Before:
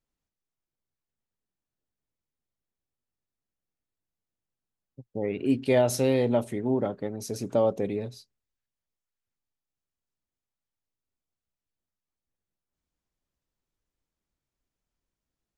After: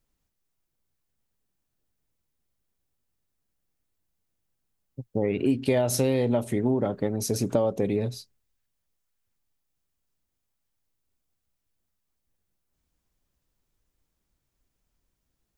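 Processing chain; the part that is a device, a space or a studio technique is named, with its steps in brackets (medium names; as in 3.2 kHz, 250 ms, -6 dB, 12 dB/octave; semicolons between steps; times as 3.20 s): ASMR close-microphone chain (bass shelf 140 Hz +5.5 dB; compression, threshold -26 dBFS, peak gain reduction 9.5 dB; treble shelf 9.6 kHz +6 dB); trim +6 dB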